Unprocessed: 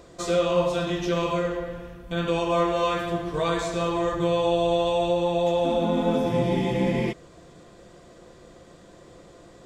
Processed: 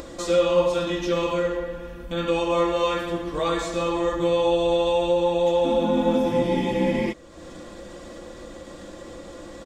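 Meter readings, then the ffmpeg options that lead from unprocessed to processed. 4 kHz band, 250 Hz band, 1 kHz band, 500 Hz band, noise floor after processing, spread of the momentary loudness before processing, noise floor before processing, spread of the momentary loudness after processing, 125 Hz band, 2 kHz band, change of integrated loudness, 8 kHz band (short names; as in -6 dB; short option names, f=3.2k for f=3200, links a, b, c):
+1.5 dB, +1.5 dB, +0.5 dB, +2.5 dB, -41 dBFS, 7 LU, -50 dBFS, 20 LU, -3.5 dB, +1.0 dB, +1.5 dB, +1.5 dB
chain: -af "aecho=1:1:3.6:0.59,acompressor=mode=upward:threshold=-30dB:ratio=2.5"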